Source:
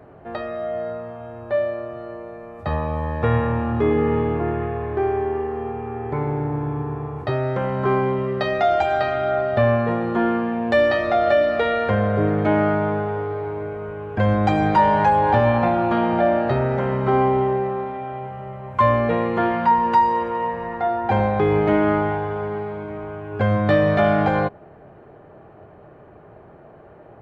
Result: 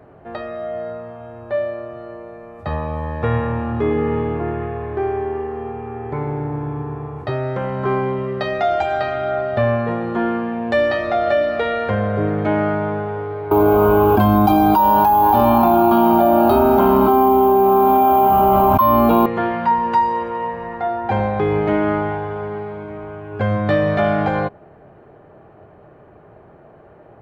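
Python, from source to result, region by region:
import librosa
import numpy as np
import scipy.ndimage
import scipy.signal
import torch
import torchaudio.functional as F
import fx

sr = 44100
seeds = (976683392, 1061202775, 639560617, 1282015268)

y = fx.chain(x, sr, fx.fixed_phaser(hz=510.0, stages=6),
    fx.resample_bad(factor=3, down='filtered', up='hold'),
    fx.env_flatten(amount_pct=100), at=(13.51, 19.26))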